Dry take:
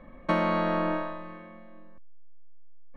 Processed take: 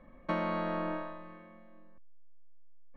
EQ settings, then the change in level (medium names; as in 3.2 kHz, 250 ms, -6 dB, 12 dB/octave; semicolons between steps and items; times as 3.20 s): distance through air 52 m; -7.0 dB